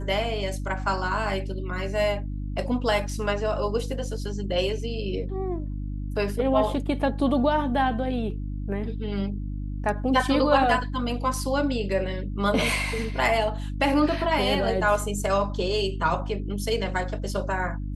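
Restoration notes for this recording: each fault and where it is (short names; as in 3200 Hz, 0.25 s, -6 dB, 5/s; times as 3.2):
hum 50 Hz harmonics 6 -31 dBFS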